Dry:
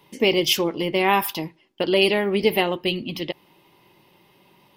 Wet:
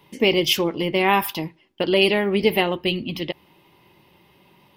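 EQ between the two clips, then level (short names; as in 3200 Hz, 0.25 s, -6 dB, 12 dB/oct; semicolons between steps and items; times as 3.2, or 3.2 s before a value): tone controls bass +3 dB, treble -12 dB; bell 76 Hz +9.5 dB 0.21 oct; high shelf 4100 Hz +11.5 dB; 0.0 dB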